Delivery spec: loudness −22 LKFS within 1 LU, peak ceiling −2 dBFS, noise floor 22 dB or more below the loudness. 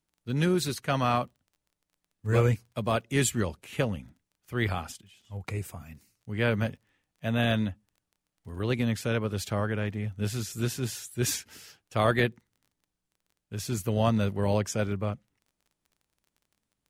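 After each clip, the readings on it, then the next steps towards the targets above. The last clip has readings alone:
crackle rate 19 per second; integrated loudness −29.5 LKFS; sample peak −10.5 dBFS; target loudness −22.0 LKFS
→ click removal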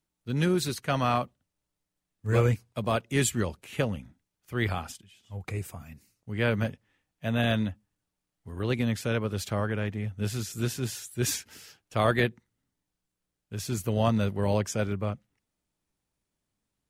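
crackle rate 0.059 per second; integrated loudness −29.5 LKFS; sample peak −10.5 dBFS; target loudness −22.0 LKFS
→ level +7.5 dB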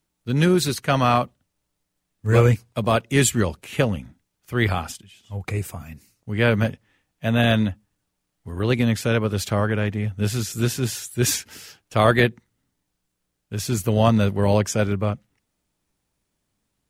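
integrated loudness −22.0 LKFS; sample peak −3.0 dBFS; background noise floor −78 dBFS

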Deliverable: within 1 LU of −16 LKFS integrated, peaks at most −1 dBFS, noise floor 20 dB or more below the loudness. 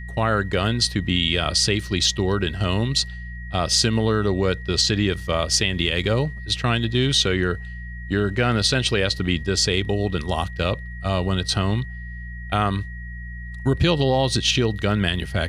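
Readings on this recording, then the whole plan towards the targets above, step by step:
mains hum 60 Hz; hum harmonics up to 180 Hz; level of the hum −31 dBFS; interfering tone 1,900 Hz; level of the tone −39 dBFS; integrated loudness −21.5 LKFS; sample peak −4.5 dBFS; target loudness −16.0 LKFS
→ hum removal 60 Hz, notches 3
notch filter 1,900 Hz, Q 30
level +5.5 dB
brickwall limiter −1 dBFS

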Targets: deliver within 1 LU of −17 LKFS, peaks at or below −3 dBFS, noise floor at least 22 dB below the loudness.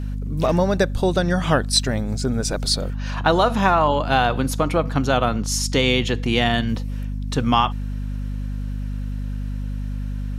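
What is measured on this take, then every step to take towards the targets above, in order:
crackle rate 43 per second; mains hum 50 Hz; hum harmonics up to 250 Hz; level of the hum −24 dBFS; integrated loudness −21.5 LKFS; sample peak −3.5 dBFS; target loudness −17.0 LKFS
→ click removal
hum removal 50 Hz, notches 5
level +4.5 dB
brickwall limiter −3 dBFS

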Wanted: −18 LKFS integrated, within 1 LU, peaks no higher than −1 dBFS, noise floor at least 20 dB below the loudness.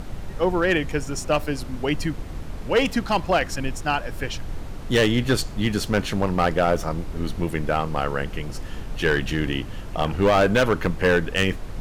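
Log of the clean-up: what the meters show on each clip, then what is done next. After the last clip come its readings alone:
share of clipped samples 0.9%; peaks flattened at −12.5 dBFS; background noise floor −34 dBFS; target noise floor −44 dBFS; integrated loudness −23.5 LKFS; sample peak −12.5 dBFS; target loudness −18.0 LKFS
→ clipped peaks rebuilt −12.5 dBFS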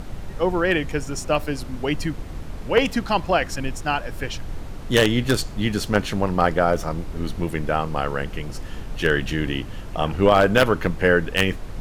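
share of clipped samples 0.0%; background noise floor −34 dBFS; target noise floor −43 dBFS
→ noise reduction from a noise print 9 dB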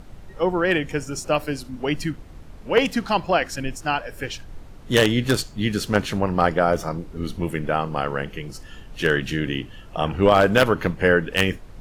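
background noise floor −42 dBFS; target noise floor −43 dBFS
→ noise reduction from a noise print 6 dB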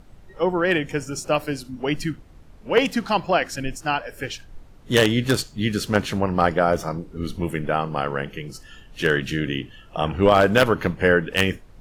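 background noise floor −47 dBFS; integrated loudness −22.5 LKFS; sample peak −3.5 dBFS; target loudness −18.0 LKFS
→ level +4.5 dB
brickwall limiter −1 dBFS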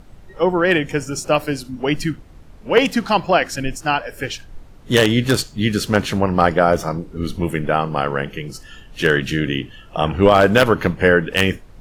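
integrated loudness −18.5 LKFS; sample peak −1.0 dBFS; background noise floor −43 dBFS

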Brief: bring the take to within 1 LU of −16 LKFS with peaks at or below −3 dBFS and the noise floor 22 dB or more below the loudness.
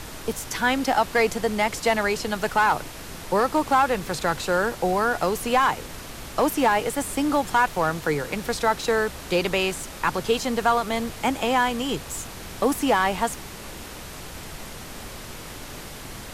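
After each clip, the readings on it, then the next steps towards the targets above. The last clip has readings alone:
share of clipped samples 0.2%; peaks flattened at −11.5 dBFS; background noise floor −39 dBFS; target noise floor −46 dBFS; integrated loudness −23.5 LKFS; sample peak −11.5 dBFS; target loudness −16.0 LKFS
→ clipped peaks rebuilt −11.5 dBFS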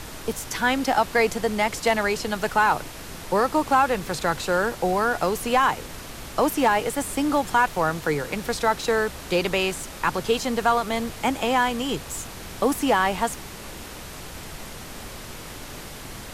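share of clipped samples 0.0%; background noise floor −39 dBFS; target noise floor −46 dBFS
→ noise reduction from a noise print 7 dB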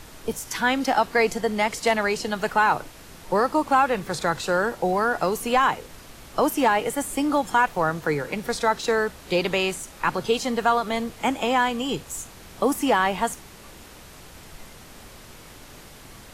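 background noise floor −45 dBFS; target noise floor −46 dBFS
→ noise reduction from a noise print 6 dB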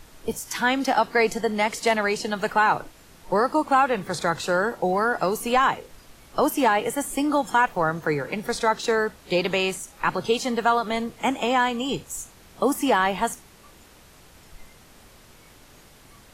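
background noise floor −51 dBFS; integrated loudness −23.5 LKFS; sample peak −7.0 dBFS; target loudness −16.0 LKFS
→ level +7.5 dB
brickwall limiter −3 dBFS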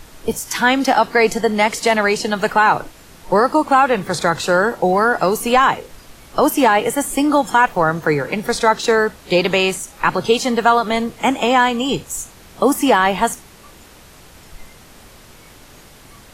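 integrated loudness −16.5 LKFS; sample peak −3.0 dBFS; background noise floor −44 dBFS

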